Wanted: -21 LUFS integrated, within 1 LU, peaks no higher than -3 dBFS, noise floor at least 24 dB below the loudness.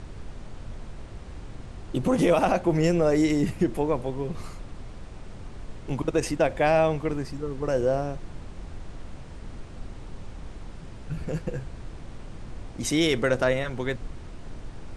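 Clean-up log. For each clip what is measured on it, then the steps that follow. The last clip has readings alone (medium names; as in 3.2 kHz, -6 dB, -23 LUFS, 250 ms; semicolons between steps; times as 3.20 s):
noise floor -42 dBFS; noise floor target -50 dBFS; loudness -25.5 LUFS; peak level -10.5 dBFS; loudness target -21.0 LUFS
-> noise print and reduce 8 dB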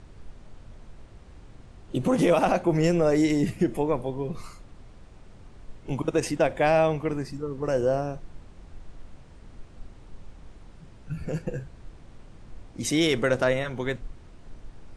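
noise floor -49 dBFS; noise floor target -50 dBFS
-> noise print and reduce 6 dB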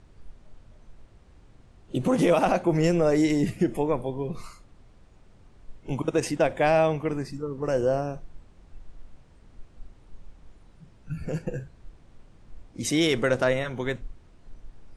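noise floor -55 dBFS; loudness -25.5 LUFS; peak level -11.0 dBFS; loudness target -21.0 LUFS
-> trim +4.5 dB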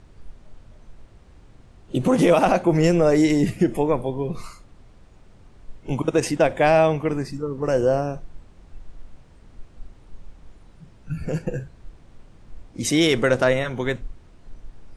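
loudness -21.0 LUFS; peak level -6.5 dBFS; noise floor -51 dBFS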